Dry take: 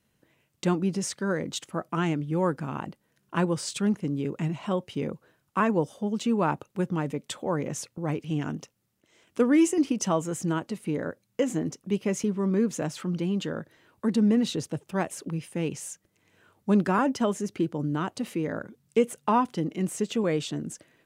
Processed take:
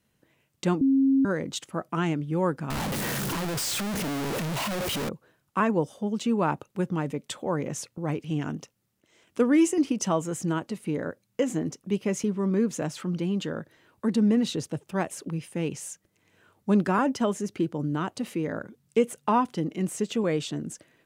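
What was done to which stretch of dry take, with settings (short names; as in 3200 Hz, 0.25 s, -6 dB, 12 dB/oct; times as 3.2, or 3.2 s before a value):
0.81–1.25 bleep 270 Hz -17.5 dBFS
2.7–5.09 infinite clipping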